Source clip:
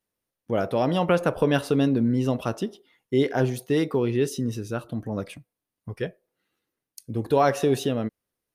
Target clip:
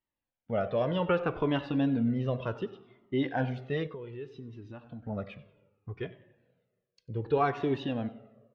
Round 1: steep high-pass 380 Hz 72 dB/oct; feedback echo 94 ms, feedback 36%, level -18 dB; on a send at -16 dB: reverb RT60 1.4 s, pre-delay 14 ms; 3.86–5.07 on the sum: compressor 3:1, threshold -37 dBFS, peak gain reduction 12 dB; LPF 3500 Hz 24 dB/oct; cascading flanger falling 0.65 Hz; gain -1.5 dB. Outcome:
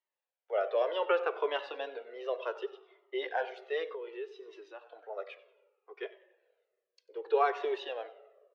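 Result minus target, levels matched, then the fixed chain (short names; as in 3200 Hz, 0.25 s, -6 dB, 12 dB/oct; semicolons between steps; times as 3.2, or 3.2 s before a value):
500 Hz band +3.0 dB
feedback echo 94 ms, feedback 36%, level -18 dB; on a send at -16 dB: reverb RT60 1.4 s, pre-delay 14 ms; 3.86–5.07 on the sum: compressor 3:1, threshold -37 dBFS, peak gain reduction 14 dB; LPF 3500 Hz 24 dB/oct; cascading flanger falling 0.65 Hz; gain -1.5 dB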